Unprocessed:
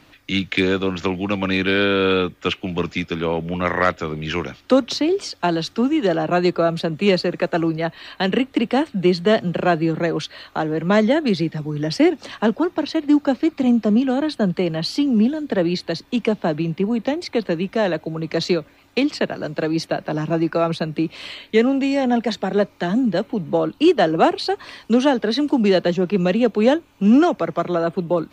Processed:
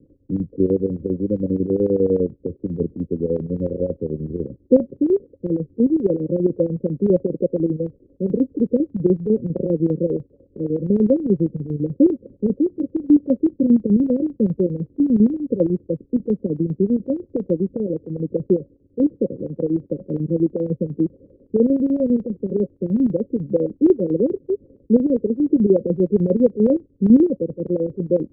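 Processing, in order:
Chebyshev low-pass filter 550 Hz, order 10
square-wave tremolo 10 Hz, depth 65%, duty 65%
level +3 dB

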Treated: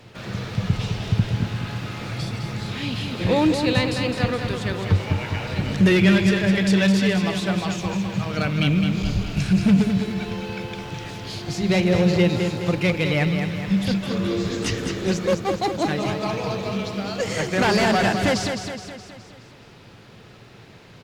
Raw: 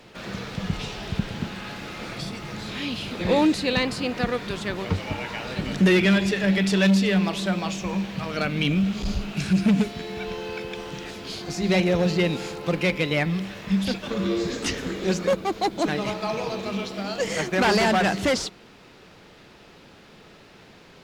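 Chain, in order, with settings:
parametric band 110 Hz +14.5 dB 0.56 octaves
on a send: repeating echo 210 ms, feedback 52%, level −6.5 dB

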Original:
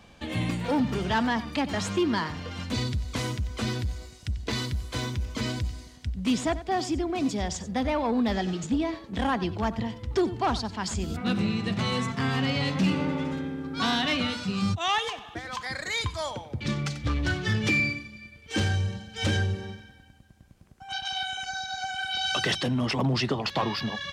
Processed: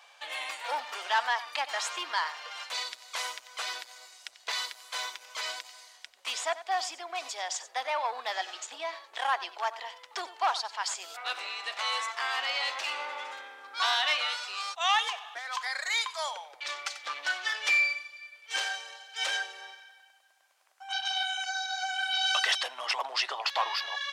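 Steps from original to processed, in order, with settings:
inverse Chebyshev high-pass filter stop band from 210 Hz, stop band 60 dB
level +1 dB

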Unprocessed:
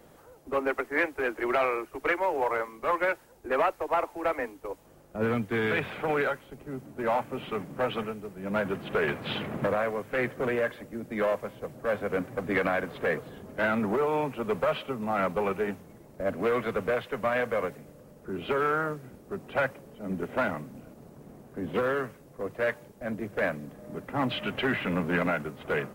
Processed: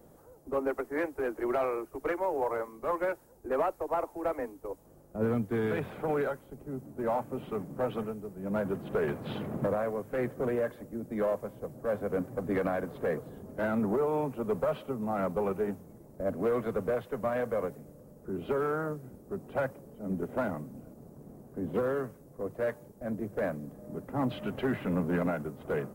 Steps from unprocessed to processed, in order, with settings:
parametric band 2,600 Hz −14 dB 2.2 octaves

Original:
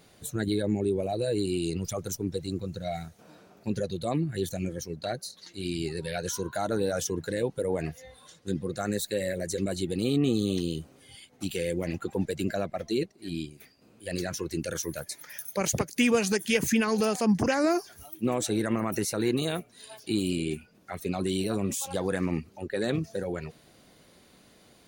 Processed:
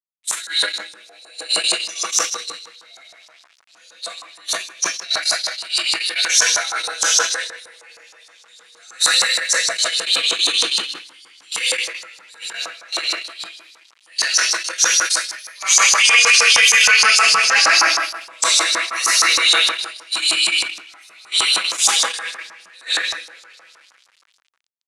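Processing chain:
first difference
comb filter 6.1 ms, depth 88%
single-tap delay 119 ms −16.5 dB
rectangular room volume 200 cubic metres, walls hard, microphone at 1.7 metres
bit reduction 7 bits
auto-filter band-pass saw up 6.4 Hz 990–6,000 Hz
noise gate −42 dBFS, range −21 dB
low-pass filter 11,000 Hz 24 dB per octave
transient designer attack −6 dB, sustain +4 dB
low-shelf EQ 440 Hz −8.5 dB
boost into a limiter +27 dB
level that may fall only so fast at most 110 dB per second
level −1.5 dB

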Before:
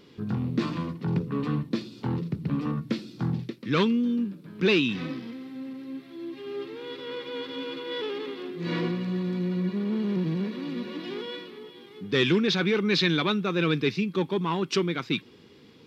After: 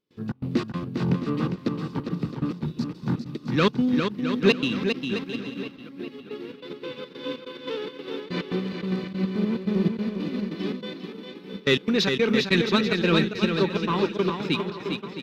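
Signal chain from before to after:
healed spectral selection 0:02.76–0:03.02, 240–3,800 Hz after
delay with a low-pass on its return 1,184 ms, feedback 61%, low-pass 3,900 Hz, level −14.5 dB
in parallel at −6 dB: soft clipping −23 dBFS, distortion −12 dB
on the sum: gate pattern ".xx.xx.x" 137 BPM −24 dB
bouncing-ball delay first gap 420 ms, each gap 0.65×, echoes 5
wrong playback speed 24 fps film run at 25 fps
expander for the loud parts 1.5 to 1, over −42 dBFS
level +2.5 dB

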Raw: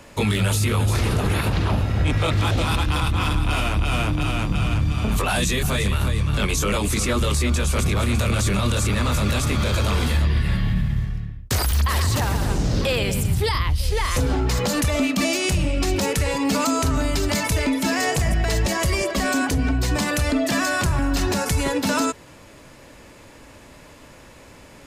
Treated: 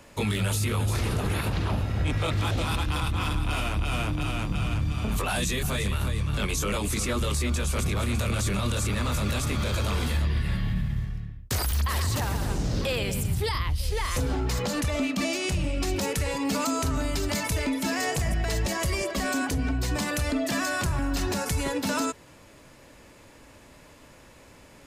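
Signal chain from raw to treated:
high-shelf EQ 9,700 Hz +3 dB, from 0:14.62 −6 dB, from 0:15.64 +2.5 dB
level −6 dB

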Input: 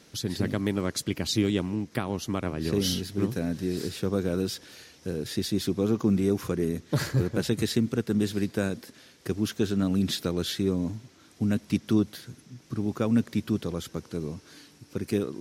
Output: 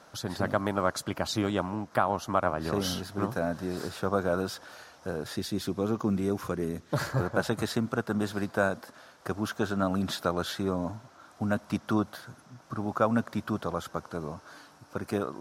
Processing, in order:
flat-topped bell 930 Hz +15 dB, from 0:05.35 +8 dB, from 0:07.11 +15 dB
level −4.5 dB

